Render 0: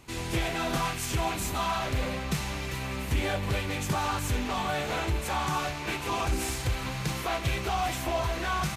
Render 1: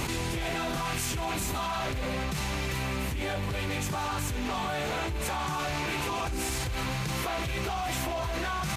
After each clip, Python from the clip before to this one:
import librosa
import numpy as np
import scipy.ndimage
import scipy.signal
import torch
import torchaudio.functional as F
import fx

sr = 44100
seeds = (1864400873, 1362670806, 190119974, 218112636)

y = fx.env_flatten(x, sr, amount_pct=100)
y = F.gain(torch.from_numpy(y), -8.0).numpy()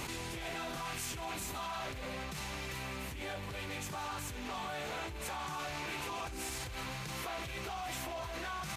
y = fx.low_shelf(x, sr, hz=340.0, db=-5.5)
y = F.gain(torch.from_numpy(y), -7.5).numpy()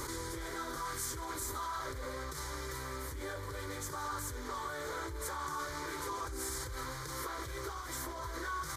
y = fx.fixed_phaser(x, sr, hz=720.0, stages=6)
y = F.gain(torch.from_numpy(y), 4.0).numpy()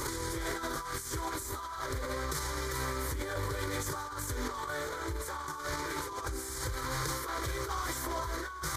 y = fx.over_compress(x, sr, threshold_db=-42.0, ratio=-0.5)
y = F.gain(torch.from_numpy(y), 6.5).numpy()